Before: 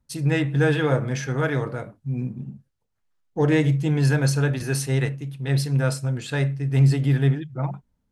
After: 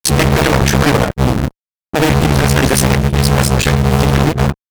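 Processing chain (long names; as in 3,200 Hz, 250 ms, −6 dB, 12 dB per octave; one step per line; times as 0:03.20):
sub-harmonics by changed cycles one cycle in 2, muted
fuzz pedal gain 37 dB, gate −45 dBFS
time stretch by overlap-add 0.58×, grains 136 ms
level +7 dB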